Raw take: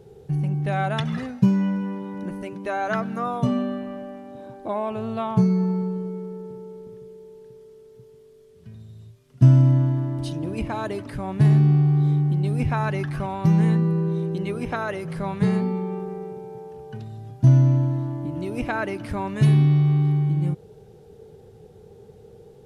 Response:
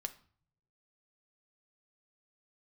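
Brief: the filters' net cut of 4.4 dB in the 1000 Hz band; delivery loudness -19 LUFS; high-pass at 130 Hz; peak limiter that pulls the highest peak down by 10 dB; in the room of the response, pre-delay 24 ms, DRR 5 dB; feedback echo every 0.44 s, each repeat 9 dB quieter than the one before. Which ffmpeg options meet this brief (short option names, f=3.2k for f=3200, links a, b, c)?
-filter_complex "[0:a]highpass=130,equalizer=f=1k:t=o:g=-6,alimiter=limit=-17.5dB:level=0:latency=1,aecho=1:1:440|880|1320|1760:0.355|0.124|0.0435|0.0152,asplit=2[a][b];[1:a]atrim=start_sample=2205,adelay=24[c];[b][c]afir=irnorm=-1:irlink=0,volume=-3.5dB[d];[a][d]amix=inputs=2:normalize=0,volume=7.5dB"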